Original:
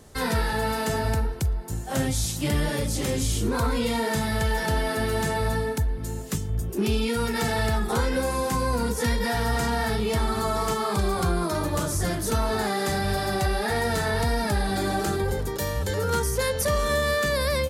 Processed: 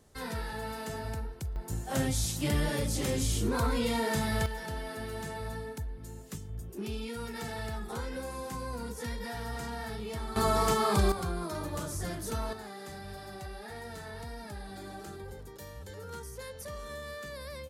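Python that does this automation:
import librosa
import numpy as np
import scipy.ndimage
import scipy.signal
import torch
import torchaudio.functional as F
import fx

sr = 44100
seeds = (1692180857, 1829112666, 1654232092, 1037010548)

y = fx.gain(x, sr, db=fx.steps((0.0, -12.0), (1.56, -4.5), (4.46, -13.0), (10.36, -1.0), (11.12, -10.0), (12.53, -18.0)))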